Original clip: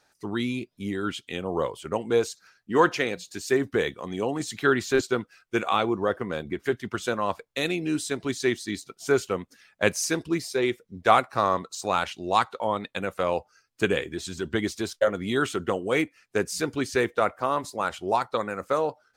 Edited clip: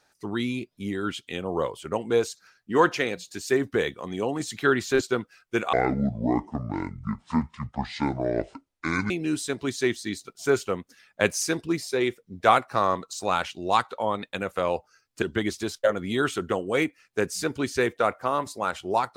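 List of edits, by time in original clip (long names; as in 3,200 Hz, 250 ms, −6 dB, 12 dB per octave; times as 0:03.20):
0:05.73–0:07.72: play speed 59%
0:13.84–0:14.40: remove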